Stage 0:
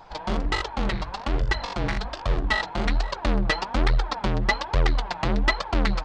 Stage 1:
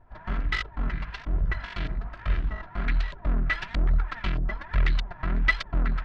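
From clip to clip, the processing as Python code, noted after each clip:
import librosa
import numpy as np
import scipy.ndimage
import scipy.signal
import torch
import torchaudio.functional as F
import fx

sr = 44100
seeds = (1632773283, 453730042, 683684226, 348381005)

y = fx.lower_of_two(x, sr, delay_ms=3.0)
y = fx.band_shelf(y, sr, hz=520.0, db=-12.0, octaves=2.3)
y = fx.filter_lfo_lowpass(y, sr, shape='saw_up', hz=1.6, low_hz=580.0, high_hz=4000.0, q=1.1)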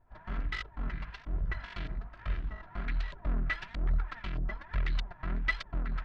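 y = fx.am_noise(x, sr, seeds[0], hz=5.7, depth_pct=50)
y = y * librosa.db_to_amplitude(-5.0)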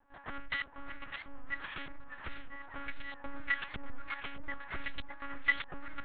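y = fx.lpc_monotone(x, sr, seeds[1], pitch_hz=280.0, order=8)
y = fx.low_shelf(y, sr, hz=420.0, db=-10.5)
y = fx.echo_warbled(y, sr, ms=599, feedback_pct=47, rate_hz=2.8, cents=178, wet_db=-11.5)
y = y * librosa.db_to_amplitude(2.5)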